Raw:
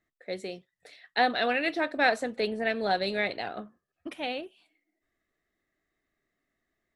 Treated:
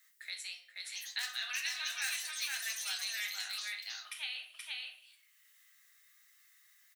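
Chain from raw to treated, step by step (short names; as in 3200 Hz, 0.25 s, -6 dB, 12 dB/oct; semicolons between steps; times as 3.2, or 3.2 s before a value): wavefolder -15 dBFS; HPF 1100 Hz 24 dB/oct; differentiator; echo 0.477 s -4 dB; on a send at -2 dB: reverb RT60 0.45 s, pre-delay 6 ms; on the sum: echoes that change speed 0.758 s, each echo +7 st, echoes 3; three-band squash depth 70%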